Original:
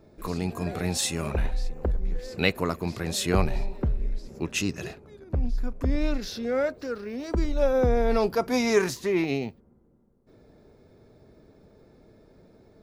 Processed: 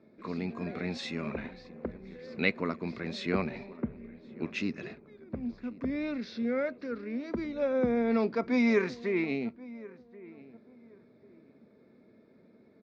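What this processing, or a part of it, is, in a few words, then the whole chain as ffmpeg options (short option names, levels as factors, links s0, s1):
kitchen radio: -filter_complex "[0:a]asettb=1/sr,asplit=3[s0][s1][s2];[s0]atrim=end=3.774[s3];[s1]atrim=start=3.77:end=4.39,asetpts=PTS-STARTPTS,afade=t=in:d=0.004:c=qsin,afade=t=out:st=0.616:d=0.004:c=qsin,lowpass=f=2900:w=0.5412,lowpass=f=2900:w=1.3066[s4];[s2]atrim=start=4.386[s5];[s3][s4]acrossfade=d=0.004:c1=hsin:c2=qsin[s6];[s6][s5]acrossfade=d=0.004:c1=qsin:c2=hsin,highpass=170,equalizer=f=230:t=q:w=4:g=9,equalizer=f=800:t=q:w=4:g=-6,equalizer=f=2200:t=q:w=4:g=7,equalizer=f=3000:t=q:w=4:g=-7,lowpass=f=4200:w=0.5412,lowpass=f=4200:w=1.3066,asplit=2[s7][s8];[s8]adelay=1082,lowpass=f=1300:p=1,volume=0.112,asplit=2[s9][s10];[s10]adelay=1082,lowpass=f=1300:p=1,volume=0.29[s11];[s7][s9][s11]amix=inputs=3:normalize=0,volume=0.531"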